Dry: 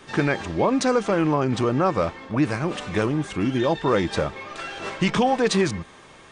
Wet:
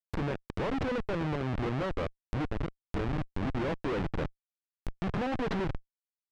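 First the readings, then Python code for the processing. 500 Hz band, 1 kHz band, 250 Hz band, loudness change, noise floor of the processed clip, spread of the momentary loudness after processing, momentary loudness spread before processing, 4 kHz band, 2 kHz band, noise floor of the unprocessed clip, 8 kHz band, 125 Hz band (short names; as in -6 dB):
-12.0 dB, -12.5 dB, -11.0 dB, -11.0 dB, under -85 dBFS, 6 LU, 10 LU, -14.5 dB, -11.5 dB, -48 dBFS, under -20 dB, -7.5 dB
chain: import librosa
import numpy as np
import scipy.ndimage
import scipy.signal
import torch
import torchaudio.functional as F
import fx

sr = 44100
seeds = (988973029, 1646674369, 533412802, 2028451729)

y = fx.schmitt(x, sr, flips_db=-21.0)
y = fx.env_lowpass_down(y, sr, base_hz=2700.0, full_db=-25.5)
y = y * librosa.db_to_amplitude(-7.0)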